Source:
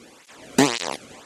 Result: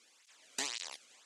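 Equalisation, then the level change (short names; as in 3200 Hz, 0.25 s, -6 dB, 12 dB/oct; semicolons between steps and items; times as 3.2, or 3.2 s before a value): air absorption 74 m; differentiator; -5.0 dB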